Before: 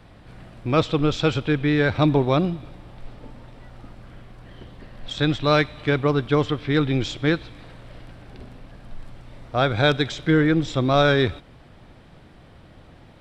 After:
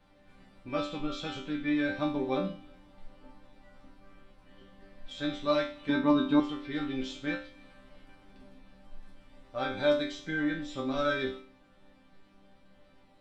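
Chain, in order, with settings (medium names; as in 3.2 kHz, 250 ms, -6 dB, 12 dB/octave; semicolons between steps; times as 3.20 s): chord resonator G3 sus4, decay 0.42 s; 5.89–6.40 s: small resonant body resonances 230/900/3700 Hz, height 17 dB; trim +6.5 dB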